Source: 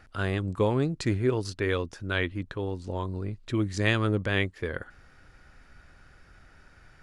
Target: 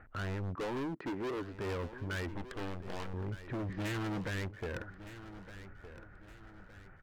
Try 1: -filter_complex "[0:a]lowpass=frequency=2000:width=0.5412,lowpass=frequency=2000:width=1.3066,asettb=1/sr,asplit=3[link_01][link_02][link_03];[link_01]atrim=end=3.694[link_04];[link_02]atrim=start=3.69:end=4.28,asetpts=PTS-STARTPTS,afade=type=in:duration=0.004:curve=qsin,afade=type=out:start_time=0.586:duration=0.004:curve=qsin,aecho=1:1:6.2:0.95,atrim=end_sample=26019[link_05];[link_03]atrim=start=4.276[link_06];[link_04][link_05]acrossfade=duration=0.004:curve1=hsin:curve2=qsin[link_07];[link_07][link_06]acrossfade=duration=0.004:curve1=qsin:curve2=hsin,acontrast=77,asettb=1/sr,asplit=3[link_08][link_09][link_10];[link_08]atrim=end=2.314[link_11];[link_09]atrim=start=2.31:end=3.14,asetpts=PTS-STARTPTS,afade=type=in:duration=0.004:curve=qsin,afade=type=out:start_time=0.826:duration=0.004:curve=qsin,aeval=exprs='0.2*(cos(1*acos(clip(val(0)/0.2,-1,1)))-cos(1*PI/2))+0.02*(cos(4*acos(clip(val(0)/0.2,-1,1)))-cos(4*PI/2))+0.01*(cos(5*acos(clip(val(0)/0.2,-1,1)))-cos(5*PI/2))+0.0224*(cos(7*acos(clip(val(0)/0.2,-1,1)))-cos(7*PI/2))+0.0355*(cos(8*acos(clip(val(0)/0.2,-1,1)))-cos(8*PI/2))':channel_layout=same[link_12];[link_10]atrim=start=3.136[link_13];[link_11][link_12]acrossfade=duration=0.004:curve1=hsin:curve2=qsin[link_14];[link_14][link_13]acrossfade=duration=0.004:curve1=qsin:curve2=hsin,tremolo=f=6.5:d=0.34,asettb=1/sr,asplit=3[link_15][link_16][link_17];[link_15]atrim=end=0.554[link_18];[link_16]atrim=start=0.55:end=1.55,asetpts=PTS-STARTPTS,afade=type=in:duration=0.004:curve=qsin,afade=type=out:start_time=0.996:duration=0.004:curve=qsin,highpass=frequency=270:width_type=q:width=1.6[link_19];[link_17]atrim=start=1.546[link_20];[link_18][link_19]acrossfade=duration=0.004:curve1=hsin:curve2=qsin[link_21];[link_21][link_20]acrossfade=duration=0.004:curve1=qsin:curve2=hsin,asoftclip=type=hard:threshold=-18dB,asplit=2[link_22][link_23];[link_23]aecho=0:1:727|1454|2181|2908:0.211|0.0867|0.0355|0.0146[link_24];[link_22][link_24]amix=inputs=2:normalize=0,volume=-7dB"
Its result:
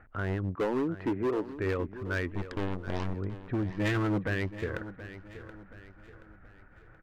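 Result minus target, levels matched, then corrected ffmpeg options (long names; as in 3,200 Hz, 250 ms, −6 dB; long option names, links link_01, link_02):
echo 487 ms early; hard clipping: distortion −6 dB
-filter_complex "[0:a]lowpass=frequency=2000:width=0.5412,lowpass=frequency=2000:width=1.3066,asettb=1/sr,asplit=3[link_01][link_02][link_03];[link_01]atrim=end=3.694[link_04];[link_02]atrim=start=3.69:end=4.28,asetpts=PTS-STARTPTS,afade=type=in:duration=0.004:curve=qsin,afade=type=out:start_time=0.586:duration=0.004:curve=qsin,aecho=1:1:6.2:0.95,atrim=end_sample=26019[link_05];[link_03]atrim=start=4.276[link_06];[link_04][link_05]acrossfade=duration=0.004:curve1=hsin:curve2=qsin[link_07];[link_07][link_06]acrossfade=duration=0.004:curve1=qsin:curve2=hsin,acontrast=77,asettb=1/sr,asplit=3[link_08][link_09][link_10];[link_08]atrim=end=2.314[link_11];[link_09]atrim=start=2.31:end=3.14,asetpts=PTS-STARTPTS,afade=type=in:duration=0.004:curve=qsin,afade=type=out:start_time=0.826:duration=0.004:curve=qsin,aeval=exprs='0.2*(cos(1*acos(clip(val(0)/0.2,-1,1)))-cos(1*PI/2))+0.02*(cos(4*acos(clip(val(0)/0.2,-1,1)))-cos(4*PI/2))+0.01*(cos(5*acos(clip(val(0)/0.2,-1,1)))-cos(5*PI/2))+0.0224*(cos(7*acos(clip(val(0)/0.2,-1,1)))-cos(7*PI/2))+0.0355*(cos(8*acos(clip(val(0)/0.2,-1,1)))-cos(8*PI/2))':channel_layout=same[link_12];[link_10]atrim=start=3.136[link_13];[link_11][link_12]acrossfade=duration=0.004:curve1=hsin:curve2=qsin[link_14];[link_14][link_13]acrossfade=duration=0.004:curve1=qsin:curve2=hsin,tremolo=f=6.5:d=0.34,asettb=1/sr,asplit=3[link_15][link_16][link_17];[link_15]atrim=end=0.554[link_18];[link_16]atrim=start=0.55:end=1.55,asetpts=PTS-STARTPTS,afade=type=in:duration=0.004:curve=qsin,afade=type=out:start_time=0.996:duration=0.004:curve=qsin,highpass=frequency=270:width_type=q:width=1.6[link_19];[link_17]atrim=start=1.546[link_20];[link_18][link_19]acrossfade=duration=0.004:curve1=hsin:curve2=qsin[link_21];[link_21][link_20]acrossfade=duration=0.004:curve1=qsin:curve2=hsin,asoftclip=type=hard:threshold=-28dB,asplit=2[link_22][link_23];[link_23]aecho=0:1:1214|2428|3642|4856:0.211|0.0867|0.0355|0.0146[link_24];[link_22][link_24]amix=inputs=2:normalize=0,volume=-7dB"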